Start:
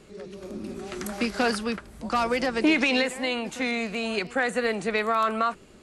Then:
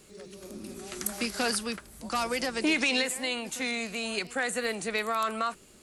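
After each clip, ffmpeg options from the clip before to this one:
ffmpeg -i in.wav -af "aemphasis=mode=production:type=75fm,volume=-5.5dB" out.wav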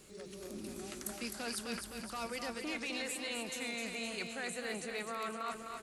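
ffmpeg -i in.wav -af "areverse,acompressor=threshold=-36dB:ratio=6,areverse,aecho=1:1:257|514|771|1028|1285|1542|1799|2056:0.501|0.296|0.174|0.103|0.0607|0.0358|0.0211|0.0125,volume=-2.5dB" out.wav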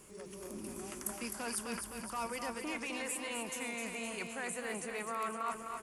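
ffmpeg -i in.wav -af "equalizer=frequency=1000:width_type=o:width=0.33:gain=9,equalizer=frequency=4000:width_type=o:width=0.33:gain=-12,equalizer=frequency=10000:width_type=o:width=0.33:gain=7" out.wav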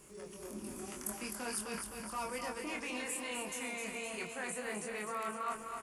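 ffmpeg -i in.wav -filter_complex "[0:a]asplit=2[link_01][link_02];[link_02]adelay=24,volume=-3.5dB[link_03];[link_01][link_03]amix=inputs=2:normalize=0,volume=-2dB" out.wav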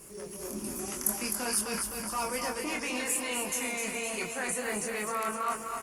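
ffmpeg -i in.wav -af "aexciter=amount=1.5:drive=6.7:freq=5000,volume=6.5dB" -ar 48000 -c:a libopus -b:a 32k out.opus

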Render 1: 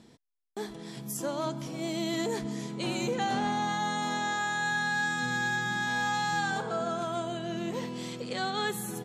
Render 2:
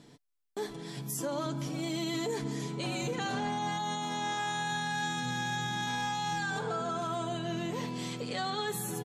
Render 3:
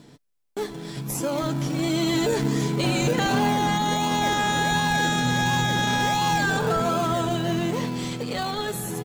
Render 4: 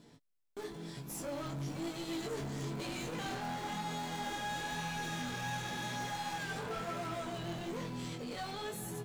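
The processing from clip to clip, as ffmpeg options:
ffmpeg -i in.wav -af "aecho=1:1:6.9:0.57,alimiter=level_in=1.5dB:limit=-24dB:level=0:latency=1:release=26,volume=-1.5dB" out.wav
ffmpeg -i in.wav -filter_complex "[0:a]dynaudnorm=framelen=210:gausssize=17:maxgain=5.5dB,asplit=2[link_01][link_02];[link_02]acrusher=samples=33:mix=1:aa=0.000001:lfo=1:lforange=19.8:lforate=1.4,volume=-8dB[link_03];[link_01][link_03]amix=inputs=2:normalize=0,volume=4.5dB" out.wav
ffmpeg -i in.wav -af "asoftclip=type=tanh:threshold=-28dB,flanger=delay=17:depth=6:speed=1,volume=-6dB" out.wav

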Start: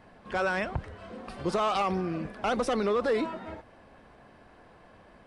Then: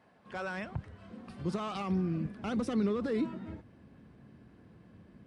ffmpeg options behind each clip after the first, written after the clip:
ffmpeg -i in.wav -af "highpass=120,asubboost=boost=12:cutoff=220,volume=-9dB" out.wav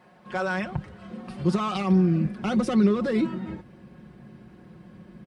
ffmpeg -i in.wav -af "aecho=1:1:5.5:0.6,volume=7.5dB" out.wav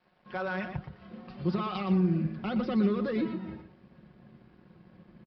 ffmpeg -i in.wav -af "aresample=11025,aeval=exprs='sgn(val(0))*max(abs(val(0))-0.0015,0)':channel_layout=same,aresample=44100,aecho=1:1:119:0.335,volume=-6dB" out.wav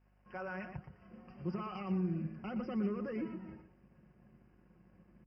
ffmpeg -i in.wav -af "aeval=exprs='val(0)+0.001*(sin(2*PI*50*n/s)+sin(2*PI*2*50*n/s)/2+sin(2*PI*3*50*n/s)/3+sin(2*PI*4*50*n/s)/4+sin(2*PI*5*50*n/s)/5)':channel_layout=same,asuperstop=centerf=3800:order=12:qfactor=2.1,volume=-9dB" out.wav

